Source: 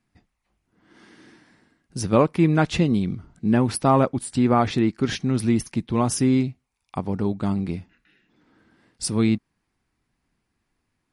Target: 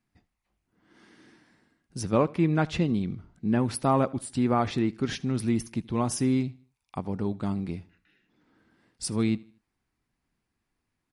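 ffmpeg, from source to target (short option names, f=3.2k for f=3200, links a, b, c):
-filter_complex "[0:a]asettb=1/sr,asplit=3[a][b][c];[a]atrim=end=2.034[d];[b]atrim=start=2.03:end=3.59,asetpts=PTS-STARTPTS,afade=t=in:d=0.004:c=qsin,afade=t=out:st=1.556:d=0.004:c=qsin,highshelf=f=8.2k:g=-9[e];[c]atrim=start=3.586[f];[d][e]acrossfade=d=0.004:c1=hsin:c2=qsin[g];[g][f]acrossfade=d=0.004:c1=qsin:c2=hsin,asplit=2[h][i];[i]aecho=0:1:78|156|234:0.0708|0.0269|0.0102[j];[h][j]amix=inputs=2:normalize=0,volume=-5.5dB"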